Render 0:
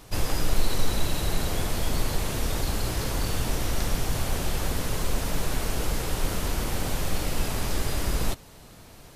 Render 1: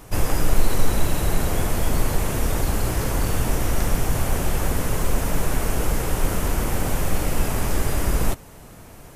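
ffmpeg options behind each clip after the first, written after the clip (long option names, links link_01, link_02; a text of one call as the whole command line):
ffmpeg -i in.wav -af "equalizer=frequency=4100:width_type=o:width=1:gain=-9,volume=5.5dB" out.wav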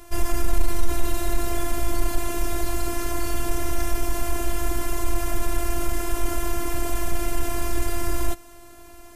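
ffmpeg -i in.wav -af "afftfilt=real='hypot(re,im)*cos(PI*b)':imag='0':win_size=512:overlap=0.75,acontrast=52,volume=-4dB" out.wav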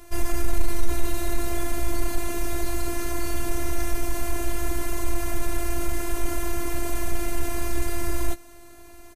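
ffmpeg -i in.wav -filter_complex "[0:a]asplit=2[link_01][link_02];[link_02]adelay=15,volume=-10.5dB[link_03];[link_01][link_03]amix=inputs=2:normalize=0,volume=-2dB" out.wav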